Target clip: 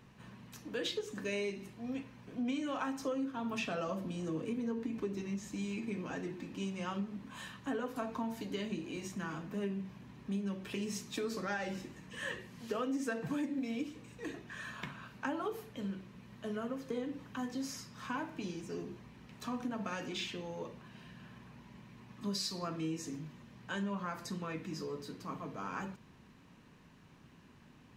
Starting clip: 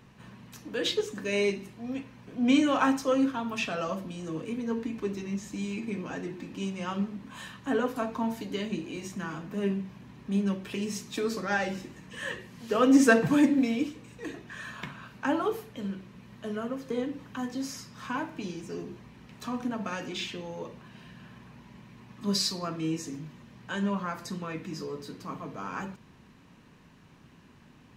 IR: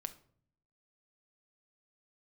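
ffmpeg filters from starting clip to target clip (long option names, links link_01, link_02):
-filter_complex "[0:a]asettb=1/sr,asplit=3[link_01][link_02][link_03];[link_01]atrim=end=2.994[link_04];[link_02]atrim=start=2.99:end=5.22,asetpts=PTS-STARTPTS,afade=type=in:duration=0.004:curve=qsin,afade=type=out:start_time=2.226:duration=0.004:curve=qsin,equalizer=frequency=280:width_type=o:width=3:gain=4[link_05];[link_03]atrim=start=5.216[link_06];[link_04][link_05]acrossfade=duration=0.004:curve1=hsin:curve2=qsin[link_07];[link_07][link_06]acrossfade=duration=0.004:curve1=qsin:curve2=hsin,acompressor=threshold=-29dB:ratio=10,volume=-4dB"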